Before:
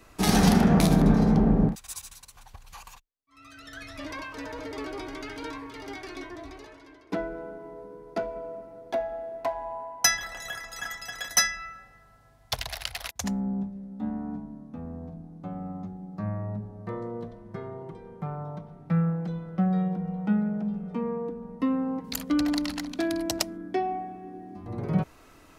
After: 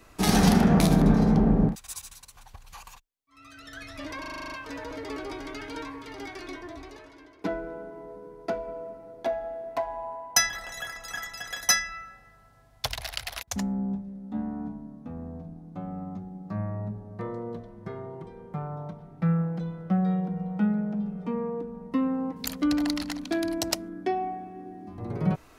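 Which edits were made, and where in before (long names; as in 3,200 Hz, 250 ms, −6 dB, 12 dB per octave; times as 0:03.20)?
0:04.20: stutter 0.04 s, 9 plays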